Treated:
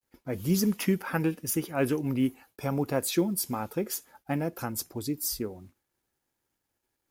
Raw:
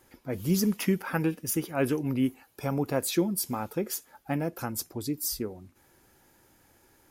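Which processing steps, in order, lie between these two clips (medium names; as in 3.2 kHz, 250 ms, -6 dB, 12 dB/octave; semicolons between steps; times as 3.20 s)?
expander -48 dBFS; companded quantiser 8-bit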